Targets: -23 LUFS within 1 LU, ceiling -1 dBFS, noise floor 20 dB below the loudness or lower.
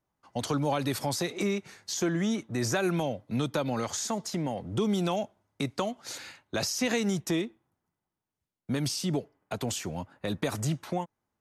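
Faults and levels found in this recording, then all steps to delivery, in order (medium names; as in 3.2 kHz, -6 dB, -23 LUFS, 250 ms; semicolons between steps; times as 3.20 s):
loudness -31.0 LUFS; peak level -15.0 dBFS; loudness target -23.0 LUFS
-> trim +8 dB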